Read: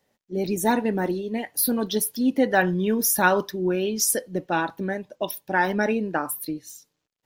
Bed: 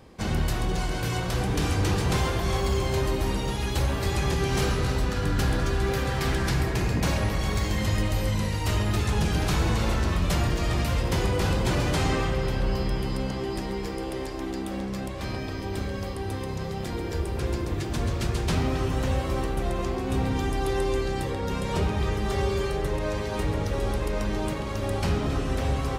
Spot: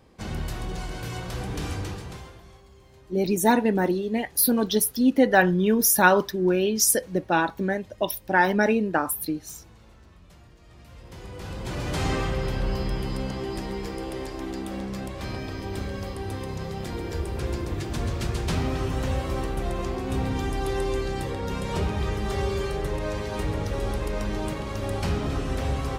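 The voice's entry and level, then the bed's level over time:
2.80 s, +2.0 dB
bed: 1.74 s -5.5 dB
2.66 s -27.5 dB
10.62 s -27.5 dB
12.07 s -1 dB

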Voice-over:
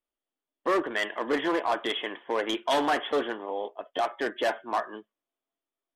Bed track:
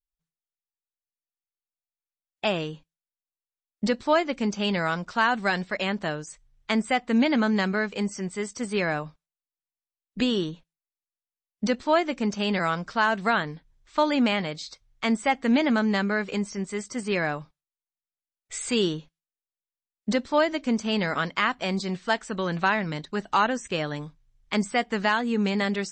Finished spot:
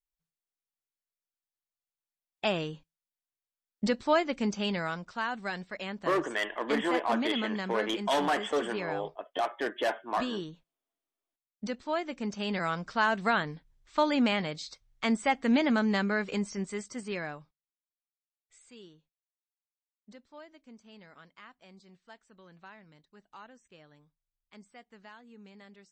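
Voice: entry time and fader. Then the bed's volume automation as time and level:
5.40 s, -2.5 dB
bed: 4.51 s -3.5 dB
5.17 s -10.5 dB
11.85 s -10.5 dB
13.05 s -3.5 dB
16.62 s -3.5 dB
18.73 s -27.5 dB

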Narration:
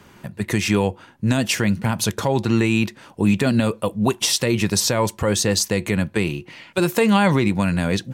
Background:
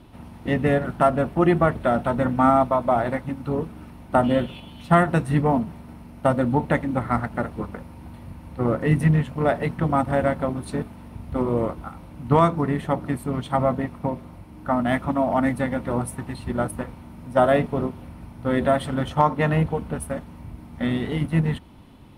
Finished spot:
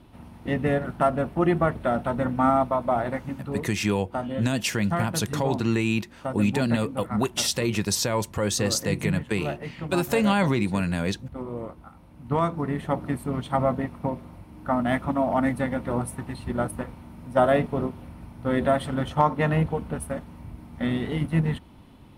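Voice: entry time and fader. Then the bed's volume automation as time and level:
3.15 s, -5.5 dB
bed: 3.31 s -3.5 dB
3.87 s -11 dB
11.87 s -11 dB
12.98 s -2 dB

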